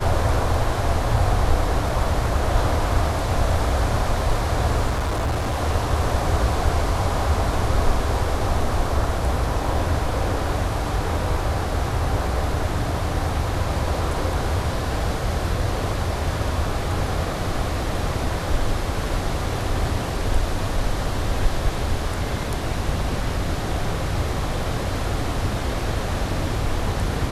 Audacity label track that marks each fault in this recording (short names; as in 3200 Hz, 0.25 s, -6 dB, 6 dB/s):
4.890000	5.610000	clipped -19.5 dBFS